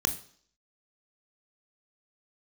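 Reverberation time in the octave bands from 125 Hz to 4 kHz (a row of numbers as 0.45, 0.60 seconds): 0.50, 0.55, 0.55, 0.55, 0.55, 0.65 seconds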